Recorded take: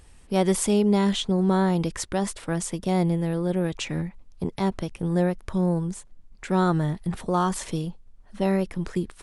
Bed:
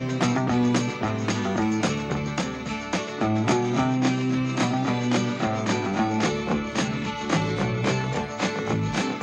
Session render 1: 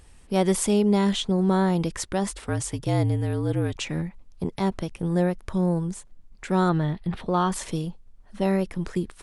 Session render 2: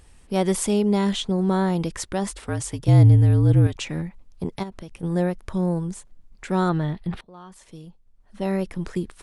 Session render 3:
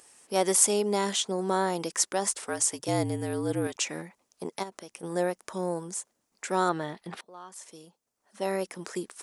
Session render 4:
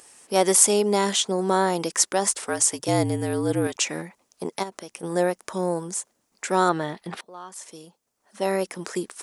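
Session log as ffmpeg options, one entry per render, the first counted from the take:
-filter_complex "[0:a]asettb=1/sr,asplit=3[a][b][c];[a]atrim=end=2.294[d];[b]atrim=start=2.29:end=3.76,asetpts=PTS-STARTPTS,afade=t=in:d=0.004:c=qsin,afade=t=out:st=1.466:d=0.004:c=qsin,afreqshift=-57[e];[c]atrim=start=3.756[f];[d][e]acrossfade=d=0.004:c1=hsin:c2=qsin[g];[g][f]acrossfade=d=0.004:c1=qsin:c2=hsin,asettb=1/sr,asplit=3[h][i][j];[h]atrim=end=6.694[k];[i]atrim=start=6.69:end=7.52,asetpts=PTS-STARTPTS,afade=t=in:d=0.004:c=qsin,afade=t=out:st=0.826:d=0.004:c=qsin,highshelf=f=5.2k:t=q:w=1.5:g=-11[l];[j]atrim=start=7.516[m];[k][l]acrossfade=d=0.004:c1=hsin:c2=qsin[n];[n][m]acrossfade=d=0.004:c1=qsin:c2=hsin"
-filter_complex "[0:a]asettb=1/sr,asplit=3[a][b][c];[a]atrim=end=2.884[d];[b]atrim=start=2.88:end=3.67,asetpts=PTS-STARTPTS,afade=t=in:d=0.004:c=qsin,afade=t=out:st=0.786:d=0.004:c=qsin,bass=f=250:g=12,treble=f=4k:g=1[e];[c]atrim=start=3.666[f];[d][e]acrossfade=d=0.004:c1=hsin:c2=qsin[g];[g][f]acrossfade=d=0.004:c1=qsin:c2=hsin,asplit=3[h][i][j];[h]afade=t=out:st=4.62:d=0.02[k];[i]acompressor=threshold=-35dB:ratio=3:attack=3.2:release=140:knee=1:detection=peak,afade=t=in:st=4.62:d=0.02,afade=t=out:st=5.02:d=0.02[l];[j]afade=t=in:st=5.02:d=0.02[m];[k][l][m]amix=inputs=3:normalize=0,asplit=2[n][o];[n]atrim=end=7.21,asetpts=PTS-STARTPTS,afade=t=out:st=7.206:d=0.004:c=hsin:silence=0.0749894[p];[o]atrim=start=7.21,asetpts=PTS-STARTPTS,afade=t=in:d=1.44:c=qua:silence=0.0749894[q];[p][q]concat=n=2:v=0:a=1"
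-af "highpass=410,highshelf=f=4.7k:t=q:w=1.5:g=6"
-af "volume=5.5dB,alimiter=limit=-1dB:level=0:latency=1"

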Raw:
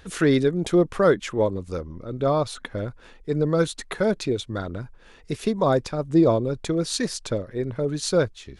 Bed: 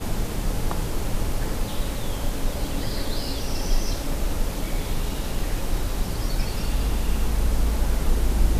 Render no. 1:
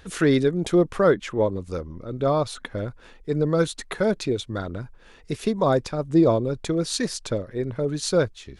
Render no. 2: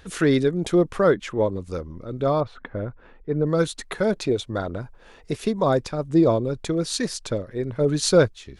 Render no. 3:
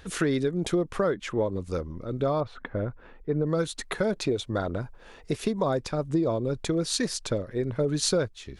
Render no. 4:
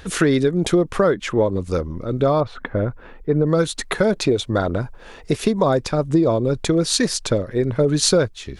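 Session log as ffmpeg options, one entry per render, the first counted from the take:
-filter_complex "[0:a]asettb=1/sr,asplit=3[a][b][c];[a]atrim=end=1.024[d];[b]atrim=start=1.02:end=1.54,asetpts=PTS-STARTPTS,afade=t=in:d=0.004:c=qsin,afade=t=out:st=0.516:d=0.004:c=qsin,highshelf=f=5k:g=-7[e];[c]atrim=start=1.536[f];[d][e]acrossfade=d=0.004:c1=hsin:c2=qsin[g];[g][f]acrossfade=d=0.004:c1=qsin:c2=hsin"
-filter_complex "[0:a]asettb=1/sr,asplit=3[a][b][c];[a]atrim=end=2.404[d];[b]atrim=start=2.4:end=3.47,asetpts=PTS-STARTPTS,afade=t=in:d=0.004:c=qsin,afade=t=out:st=1.066:d=0.004:c=qsin,lowpass=1.8k[e];[c]atrim=start=3.466[f];[d][e]acrossfade=d=0.004:c1=hsin:c2=qsin[g];[g][f]acrossfade=d=0.004:c1=qsin:c2=hsin,asettb=1/sr,asplit=3[h][i][j];[h]atrim=end=4.134[k];[i]atrim=start=4.13:end=5.38,asetpts=PTS-STARTPTS,afade=t=in:d=0.004:c=qsin,afade=t=out:st=1.246:d=0.004:c=qsin,equalizer=f=690:w=1:g=6[l];[j]atrim=start=5.376[m];[k][l]acrossfade=d=0.004:c1=hsin:c2=qsin[n];[n][m]acrossfade=d=0.004:c1=qsin:c2=hsin,asplit=3[o][p][q];[o]afade=t=out:st=7.79:d=0.02[r];[p]acontrast=21,afade=t=in:st=7.79:d=0.02,afade=t=out:st=8.26:d=0.02[s];[q]afade=t=in:st=8.26:d=0.02[t];[r][s][t]amix=inputs=3:normalize=0"
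-af "acompressor=threshold=-22dB:ratio=6"
-af "volume=8.5dB"

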